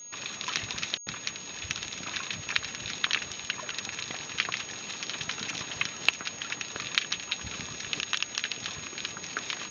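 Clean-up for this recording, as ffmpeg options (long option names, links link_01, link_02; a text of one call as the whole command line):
ffmpeg -i in.wav -af "adeclick=threshold=4,bandreject=frequency=6600:width=30" out.wav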